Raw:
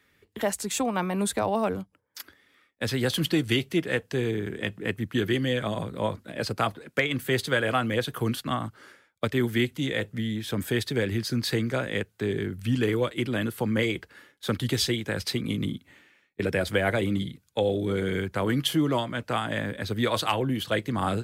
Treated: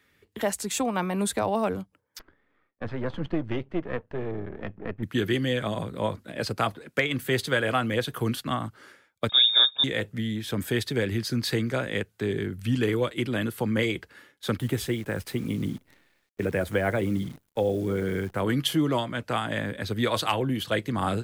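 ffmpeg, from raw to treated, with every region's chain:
-filter_complex "[0:a]asettb=1/sr,asplit=3[s0][s1][s2];[s0]atrim=end=2.194[s3];[s1]atrim=start=2.19:end=5.03,asetpts=PTS-STARTPTS,afade=t=in:d=0.004:c=qsin,afade=t=out:st=2.836:d=0.004:c=qsin,aeval=exprs='if(lt(val(0),0),0.251*val(0),val(0))':c=same,lowpass=1400[s4];[s2]atrim=start=5.026[s5];[s3][s4]acrossfade=d=0.004:c1=hsin:c2=qsin[s6];[s6][s5]acrossfade=d=0.004:c1=qsin:c2=hsin,asettb=1/sr,asplit=3[s7][s8][s9];[s7]atrim=end=9.294[s10];[s8]atrim=start=9.29:end=9.84,asetpts=PTS-STARTPTS,afade=t=in:d=0.004:c=qsin,afade=t=out:st=0.546:d=0.004:c=qsin,lowshelf=f=270:g=10,lowpass=f=3200:t=q:w=0.5098,lowpass=f=3200:t=q:w=0.6013,lowpass=f=3200:t=q:w=0.9,lowpass=f=3200:t=q:w=2.563,afreqshift=-3800,asuperstop=centerf=1900:order=12:qfactor=5.5[s11];[s9]atrim=start=9.836[s12];[s10][s11]acrossfade=d=0.004:c1=hsin:c2=qsin[s13];[s13][s12]acrossfade=d=0.004:c1=qsin:c2=hsin,asettb=1/sr,asplit=3[s14][s15][s16];[s14]atrim=end=14.584[s17];[s15]atrim=start=14.58:end=18.4,asetpts=PTS-STARTPTS,afade=t=in:d=0.004:c=qsin,afade=t=out:st=3.816:d=0.004:c=qsin,equalizer=f=4700:w=1:g=-14,acrusher=bits=9:dc=4:mix=0:aa=0.000001[s18];[s16]atrim=start=18.396[s19];[s17][s18]acrossfade=d=0.004:c1=hsin:c2=qsin[s20];[s20][s19]acrossfade=d=0.004:c1=qsin:c2=hsin"

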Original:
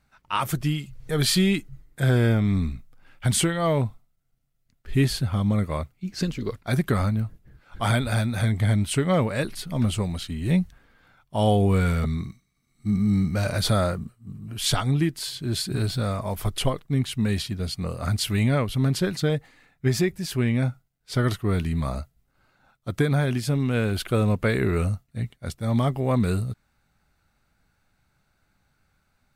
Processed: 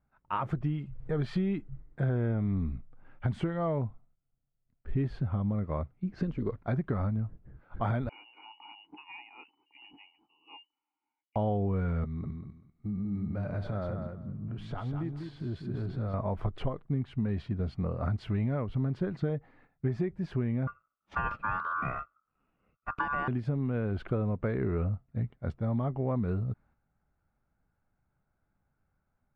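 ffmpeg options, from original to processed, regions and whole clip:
-filter_complex "[0:a]asettb=1/sr,asplit=3[s0][s1][s2];[s0]atrim=end=8.094[s3];[s1]atrim=start=8.09:end=11.36,asetpts=PTS-STARTPTS,afade=t=in:d=0.004:c=qsin,afade=t=out:st=3.266:d=0.004:c=qsin,lowpass=f=2600:t=q:w=0.5098,lowpass=f=2600:t=q:w=0.6013,lowpass=f=2600:t=q:w=0.9,lowpass=f=2600:t=q:w=2.563,afreqshift=-3000,asplit=3[s4][s5][s6];[s4]bandpass=f=300:t=q:w=8,volume=1[s7];[s5]bandpass=f=870:t=q:w=8,volume=0.501[s8];[s6]bandpass=f=2240:t=q:w=8,volume=0.355[s9];[s7][s8][s9]amix=inputs=3:normalize=0[s10];[s2]atrim=start=11.356[s11];[s3][s10]acrossfade=d=0.004:c1=hsin:c2=qsin[s12];[s12][s11]acrossfade=d=0.004:c1=qsin:c2=hsin,asettb=1/sr,asplit=3[s13][s14][s15];[s13]atrim=end=12.044[s16];[s14]atrim=start=12.04:end=16.14,asetpts=PTS-STARTPTS,afade=t=in:d=0.004:c=qsin,afade=t=out:st=4.096:d=0.004:c=qsin,acompressor=threshold=0.02:ratio=3:attack=3.2:release=140:knee=1:detection=peak,aecho=1:1:196|392|588:0.501|0.0952|0.0181,atrim=end_sample=180810[s17];[s15]atrim=start=16.136[s18];[s16][s17]acrossfade=d=0.004:c1=hsin:c2=qsin[s19];[s19][s18]acrossfade=d=0.004:c1=qsin:c2=hsin,asettb=1/sr,asplit=3[s20][s21][s22];[s20]atrim=end=20.674[s23];[s21]atrim=start=20.67:end=23.28,asetpts=PTS-STARTPTS,afade=t=in:d=0.004:c=qsin,afade=t=out:st=2.606:d=0.004:c=qsin,equalizer=f=1200:w=3.1:g=8.5,aeval=exprs='val(0)*sin(2*PI*1300*n/s)':c=same[s24];[s22]atrim=start=23.276[s25];[s23][s24]acrossfade=d=0.004:c1=hsin:c2=qsin[s26];[s26][s25]acrossfade=d=0.004:c1=qsin:c2=hsin,lowpass=1200,agate=range=0.398:threshold=0.00141:ratio=16:detection=peak,acompressor=threshold=0.0398:ratio=4"

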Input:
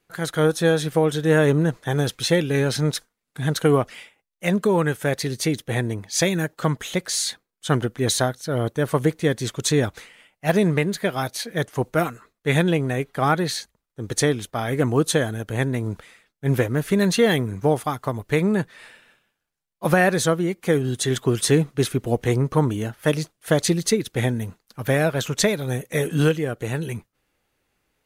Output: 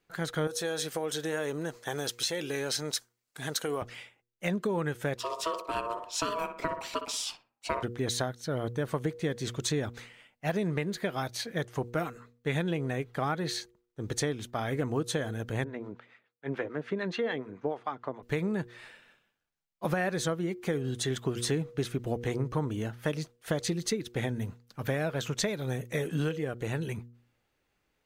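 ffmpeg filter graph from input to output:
-filter_complex "[0:a]asettb=1/sr,asplit=3[s0][s1][s2];[s0]atrim=end=0.474[s3];[s1]atrim=start=0.47:end=3.82,asetpts=PTS-STARTPTS,afade=t=in:d=0.004:c=qsin,afade=t=out:st=3.346:d=0.004:c=qsin,acompressor=threshold=0.1:ratio=3:attack=3.2:release=140:knee=1:detection=peak,bass=f=250:g=-13,treble=f=4000:g=9,bandreject=f=3600:w=24[s4];[s2]atrim=start=3.816[s5];[s3][s4]acrossfade=d=0.004:c1=hsin:c2=qsin[s6];[s6][s5]acrossfade=d=0.004:c1=qsin:c2=hsin,asettb=1/sr,asplit=3[s7][s8][s9];[s7]atrim=end=5.174[s10];[s8]atrim=start=5.17:end=7.83,asetpts=PTS-STARTPTS,afade=t=in:d=0.004:c=qsin,afade=t=out:st=2.656:d=0.004:c=qsin,asplit=2[s11][s12];[s12]adelay=61,lowpass=f=1400:p=1,volume=0.376,asplit=2[s13][s14];[s14]adelay=61,lowpass=f=1400:p=1,volume=0.4,asplit=2[s15][s16];[s16]adelay=61,lowpass=f=1400:p=1,volume=0.4,asplit=2[s17][s18];[s18]adelay=61,lowpass=f=1400:p=1,volume=0.4[s19];[s11][s13][s15][s17][s19]amix=inputs=5:normalize=0,atrim=end_sample=117306,aeval=exprs='val(0)*sin(2*PI*810*n/s)':c=same[s20];[s9]atrim=start=7.826[s21];[s10][s20]acrossfade=d=0.004:c1=hsin:c2=qsin[s22];[s22][s21]acrossfade=d=0.004:c1=qsin:c2=hsin,asettb=1/sr,asplit=3[s23][s24][s25];[s23]atrim=end=15.644[s26];[s24]atrim=start=15.64:end=18.23,asetpts=PTS-STARTPTS,afade=t=in:d=0.004:c=qsin,afade=t=out:st=2.586:d=0.004:c=qsin,highpass=270,lowpass=2700,acrossover=split=640[s27][s28];[s27]aeval=exprs='val(0)*(1-0.7/2+0.7/2*cos(2*PI*6.9*n/s))':c=same[s29];[s28]aeval=exprs='val(0)*(1-0.7/2-0.7/2*cos(2*PI*6.9*n/s))':c=same[s30];[s29][s30]amix=inputs=2:normalize=0[s31];[s25]atrim=start=18.226[s32];[s26][s31]acrossfade=d=0.004:c1=hsin:c2=qsin[s33];[s33][s32]acrossfade=d=0.004:c1=qsin:c2=hsin,equalizer=f=11000:t=o:w=0.72:g=-8,bandreject=f=119.7:t=h:w=4,bandreject=f=239.4:t=h:w=4,bandreject=f=359.1:t=h:w=4,bandreject=f=478.8:t=h:w=4,acompressor=threshold=0.0631:ratio=3,volume=0.596"

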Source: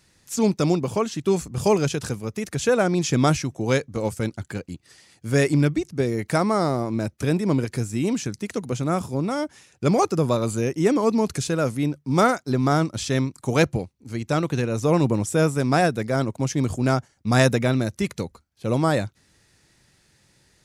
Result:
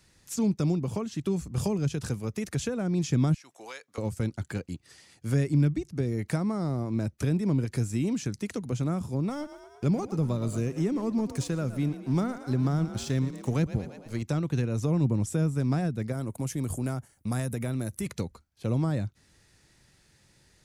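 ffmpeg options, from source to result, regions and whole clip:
-filter_complex "[0:a]asettb=1/sr,asplit=3[s0][s1][s2];[s0]atrim=end=3.344[s3];[s1]atrim=start=3.34:end=3.98,asetpts=PTS-STARTPTS,afade=t=in:d=0.004:c=qsin,afade=t=out:st=0.636:d=0.004:c=qsin,highpass=950,bandreject=f=6100:w=14,acompressor=threshold=0.0126:ratio=3:attack=3.2:release=140:knee=1:detection=peak[s4];[s2]atrim=start=3.976[s5];[s3][s4]acrossfade=d=0.004:c1=hsin:c2=qsin[s6];[s6][s5]acrossfade=d=0.004:c1=qsin:c2=hsin,asettb=1/sr,asplit=3[s7][s8][s9];[s7]atrim=end=9.294[s10];[s8]atrim=start=9.29:end=14.22,asetpts=PTS-STARTPTS,afade=t=in:d=0.004:c=qsin,afade=t=out:st=4.926:d=0.004:c=qsin,aeval=exprs='sgn(val(0))*max(abs(val(0))-0.00794,0)':c=same,asplit=5[s11][s12][s13][s14][s15];[s12]adelay=113,afreqshift=35,volume=0.188[s16];[s13]adelay=226,afreqshift=70,volume=0.0851[s17];[s14]adelay=339,afreqshift=105,volume=0.038[s18];[s15]adelay=452,afreqshift=140,volume=0.0172[s19];[s11][s16][s17][s18][s19]amix=inputs=5:normalize=0,atrim=end_sample=217413,acompressor=mode=upward:threshold=0.00794:ratio=2.5:attack=3.2:release=140:knee=2.83:detection=peak[s20];[s9]atrim=start=14.216[s21];[s10][s20]acrossfade=d=0.004:c1=hsin:c2=qsin[s22];[s22][s21]acrossfade=d=0.004:c1=qsin:c2=hsin,asettb=1/sr,asplit=3[s23][s24][s25];[s23]atrim=end=16.124[s26];[s24]atrim=start=16.12:end=18.06,asetpts=PTS-STARTPTS,afade=t=in:d=0.004:c=qsin,afade=t=out:st=1.936:d=0.004:c=qsin,highshelf=f=7600:t=q:w=1.5:g=11.5,acompressor=threshold=0.0398:ratio=2:attack=3.2:release=140:knee=1:detection=peak[s27];[s25]atrim=start=18.056[s28];[s26][s27]acrossfade=d=0.004:c1=hsin:c2=qsin[s29];[s29][s28]acrossfade=d=0.004:c1=qsin:c2=hsin,lowshelf=f=62:g=6.5,acrossover=split=260[s30][s31];[s31]acompressor=threshold=0.0282:ratio=10[s32];[s30][s32]amix=inputs=2:normalize=0,volume=0.75"

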